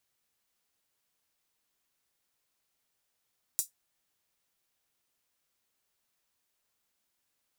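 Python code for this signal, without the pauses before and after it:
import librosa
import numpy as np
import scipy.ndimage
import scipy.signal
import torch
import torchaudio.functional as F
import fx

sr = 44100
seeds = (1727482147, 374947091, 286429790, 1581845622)

y = fx.drum_hat(sr, length_s=0.24, from_hz=7100.0, decay_s=0.14)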